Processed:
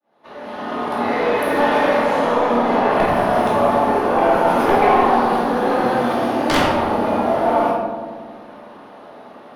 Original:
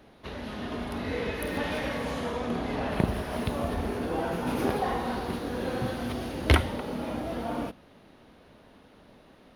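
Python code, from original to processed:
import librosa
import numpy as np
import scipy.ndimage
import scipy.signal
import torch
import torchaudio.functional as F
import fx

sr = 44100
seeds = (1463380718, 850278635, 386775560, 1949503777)

p1 = fx.fade_in_head(x, sr, length_s=1.05)
p2 = scipy.signal.sosfilt(scipy.signal.butter(2, 190.0, 'highpass', fs=sr, output='sos'), p1)
p3 = fx.peak_eq(p2, sr, hz=870.0, db=13.5, octaves=1.8)
p4 = fx.fold_sine(p3, sr, drive_db=11, ceiling_db=-1.0)
p5 = p4 + fx.echo_filtered(p4, sr, ms=93, feedback_pct=79, hz=1400.0, wet_db=-8, dry=0)
p6 = fx.room_shoebox(p5, sr, seeds[0], volume_m3=420.0, walls='mixed', distance_m=2.5)
y = p6 * 10.0 ** (-14.5 / 20.0)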